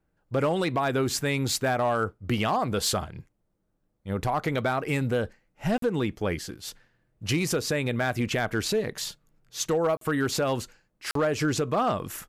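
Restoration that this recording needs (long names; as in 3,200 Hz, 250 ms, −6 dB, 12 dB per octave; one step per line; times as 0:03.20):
clipped peaks rebuilt −18 dBFS
repair the gap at 0:05.78/0:09.97/0:11.11, 43 ms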